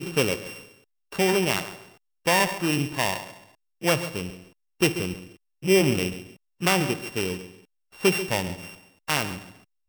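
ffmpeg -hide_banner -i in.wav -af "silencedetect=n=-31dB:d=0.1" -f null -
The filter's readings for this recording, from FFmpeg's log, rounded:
silence_start: 0.53
silence_end: 1.13 | silence_duration: 0.59
silence_start: 1.73
silence_end: 2.27 | silence_duration: 0.53
silence_start: 3.27
silence_end: 3.83 | silence_duration: 0.56
silence_start: 4.33
silence_end: 4.81 | silence_duration: 0.47
silence_start: 5.20
silence_end: 5.64 | silence_duration: 0.44
silence_start: 6.20
silence_end: 6.62 | silence_duration: 0.42
silence_start: 7.40
silence_end: 8.02 | silence_duration: 0.62
silence_start: 8.65
silence_end: 9.08 | silence_duration: 0.43
silence_start: 9.42
silence_end: 9.89 | silence_duration: 0.47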